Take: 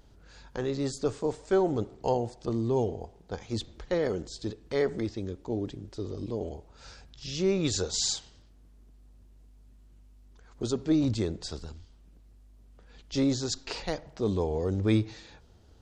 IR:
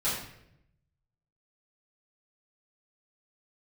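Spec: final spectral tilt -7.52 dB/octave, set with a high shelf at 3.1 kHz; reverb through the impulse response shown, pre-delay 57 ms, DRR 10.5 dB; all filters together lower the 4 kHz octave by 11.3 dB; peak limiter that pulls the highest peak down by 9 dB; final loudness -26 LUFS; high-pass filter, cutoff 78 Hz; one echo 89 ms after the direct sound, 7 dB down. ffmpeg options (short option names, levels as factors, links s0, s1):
-filter_complex "[0:a]highpass=78,highshelf=f=3100:g=-8,equalizer=f=4000:t=o:g=-7.5,alimiter=limit=0.075:level=0:latency=1,aecho=1:1:89:0.447,asplit=2[s0][s1];[1:a]atrim=start_sample=2205,adelay=57[s2];[s1][s2]afir=irnorm=-1:irlink=0,volume=0.112[s3];[s0][s3]amix=inputs=2:normalize=0,volume=2.37"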